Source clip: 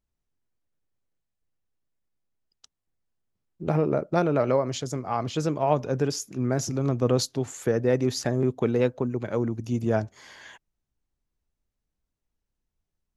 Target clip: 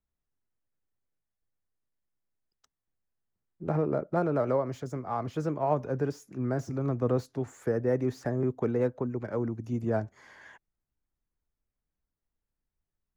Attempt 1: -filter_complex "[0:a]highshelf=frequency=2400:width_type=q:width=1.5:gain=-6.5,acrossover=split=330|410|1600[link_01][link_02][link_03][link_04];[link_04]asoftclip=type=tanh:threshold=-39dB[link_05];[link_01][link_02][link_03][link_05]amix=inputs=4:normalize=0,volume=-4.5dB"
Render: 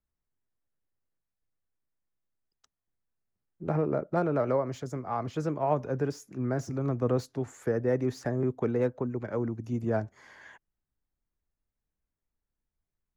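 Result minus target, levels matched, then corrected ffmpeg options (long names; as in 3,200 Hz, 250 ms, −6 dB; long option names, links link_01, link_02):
soft clipping: distortion −4 dB
-filter_complex "[0:a]highshelf=frequency=2400:width_type=q:width=1.5:gain=-6.5,acrossover=split=330|410|1600[link_01][link_02][link_03][link_04];[link_04]asoftclip=type=tanh:threshold=-45.5dB[link_05];[link_01][link_02][link_03][link_05]amix=inputs=4:normalize=0,volume=-4.5dB"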